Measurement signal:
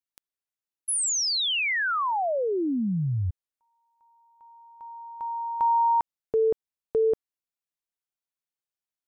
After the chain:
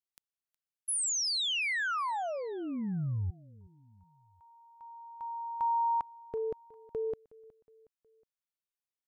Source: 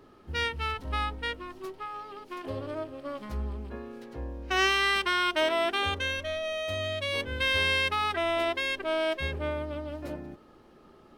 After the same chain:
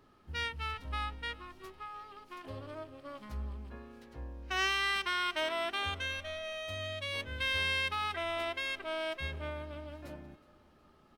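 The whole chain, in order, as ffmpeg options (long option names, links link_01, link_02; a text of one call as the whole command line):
ffmpeg -i in.wav -af "equalizer=frequency=400:width=0.94:gain=-6.5,aecho=1:1:366|732|1098:0.0794|0.0397|0.0199,volume=-5.5dB" out.wav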